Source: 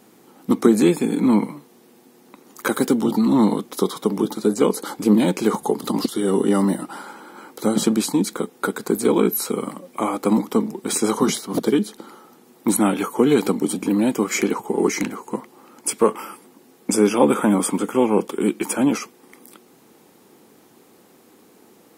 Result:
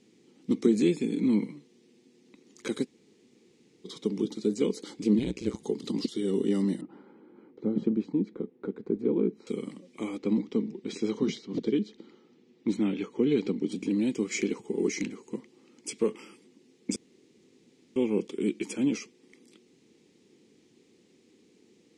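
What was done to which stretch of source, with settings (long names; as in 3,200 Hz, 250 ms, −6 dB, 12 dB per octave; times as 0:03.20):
0:02.84–0:03.87: fill with room tone, crossfade 0.06 s
0:05.19–0:05.60: amplitude modulation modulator 120 Hz, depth 85%
0:06.81–0:09.47: low-pass filter 1,100 Hz
0:10.18–0:13.72: high-frequency loss of the air 140 metres
0:16.96–0:17.96: fill with room tone
whole clip: low-pass filter 7,200 Hz 24 dB per octave; flat-topped bell 960 Hz −14.5 dB; level −8 dB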